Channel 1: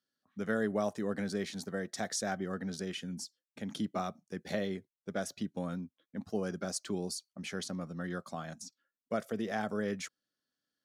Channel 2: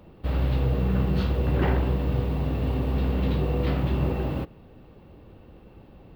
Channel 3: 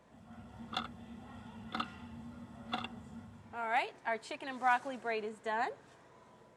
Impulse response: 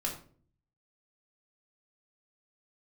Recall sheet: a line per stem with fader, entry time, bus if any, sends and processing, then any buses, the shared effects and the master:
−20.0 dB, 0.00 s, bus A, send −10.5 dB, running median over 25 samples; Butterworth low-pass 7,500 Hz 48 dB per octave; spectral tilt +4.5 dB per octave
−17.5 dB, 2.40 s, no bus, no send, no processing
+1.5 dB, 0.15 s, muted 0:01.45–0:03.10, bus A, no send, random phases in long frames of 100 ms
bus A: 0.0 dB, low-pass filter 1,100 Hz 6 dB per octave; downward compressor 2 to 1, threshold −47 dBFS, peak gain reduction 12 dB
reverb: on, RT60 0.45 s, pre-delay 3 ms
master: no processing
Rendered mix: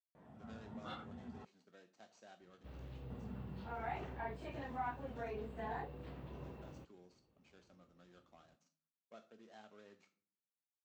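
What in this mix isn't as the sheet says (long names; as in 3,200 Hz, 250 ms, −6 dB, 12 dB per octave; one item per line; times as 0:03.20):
stem 2 −17.5 dB → −25.0 dB
master: extra high-pass filter 64 Hz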